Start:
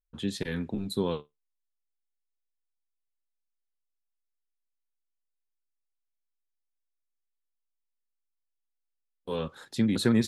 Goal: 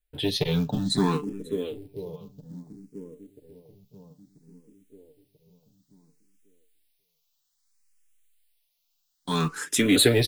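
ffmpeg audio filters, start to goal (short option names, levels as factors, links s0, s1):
-filter_complex "[0:a]acrossover=split=690|2300[s0][s1][s2];[s0]aecho=1:1:987|1974|2961|3948|4935:0.188|0.0998|0.0529|0.028|0.0149[s3];[s2]dynaudnorm=f=890:g=3:m=4.47[s4];[s3][s1][s4]amix=inputs=3:normalize=0,adynamicequalizer=threshold=0.00316:dfrequency=400:dqfactor=6.6:tfrequency=400:tqfactor=6.6:attack=5:release=100:ratio=0.375:range=2:mode=boostabove:tftype=bell,asplit=2[s5][s6];[s6]adelay=541,lowpass=f=2400:p=1,volume=0.282,asplit=2[s7][s8];[s8]adelay=541,lowpass=f=2400:p=1,volume=0.17[s9];[s5][s7][s9]amix=inputs=3:normalize=0,asplit=2[s10][s11];[s11]aeval=exprs='0.0631*(abs(mod(val(0)/0.0631+3,4)-2)-1)':c=same,volume=0.355[s12];[s10][s12]amix=inputs=2:normalize=0,aecho=1:1:6.8:0.56,acrusher=bits=7:mode=log:mix=0:aa=0.000001,asplit=2[s13][s14];[s14]afreqshift=0.6[s15];[s13][s15]amix=inputs=2:normalize=1,volume=2.24"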